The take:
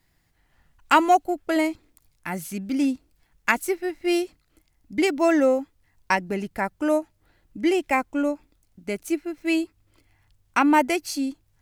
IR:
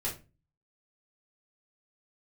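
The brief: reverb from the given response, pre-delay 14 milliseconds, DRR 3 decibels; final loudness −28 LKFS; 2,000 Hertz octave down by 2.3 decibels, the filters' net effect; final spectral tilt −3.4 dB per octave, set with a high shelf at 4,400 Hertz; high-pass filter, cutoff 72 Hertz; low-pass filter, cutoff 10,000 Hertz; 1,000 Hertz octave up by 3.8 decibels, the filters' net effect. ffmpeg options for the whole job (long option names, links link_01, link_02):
-filter_complex "[0:a]highpass=72,lowpass=10000,equalizer=frequency=1000:width_type=o:gain=6,equalizer=frequency=2000:width_type=o:gain=-4.5,highshelf=frequency=4400:gain=-3.5,asplit=2[link_01][link_02];[1:a]atrim=start_sample=2205,adelay=14[link_03];[link_02][link_03]afir=irnorm=-1:irlink=0,volume=-6.5dB[link_04];[link_01][link_04]amix=inputs=2:normalize=0,volume=-7dB"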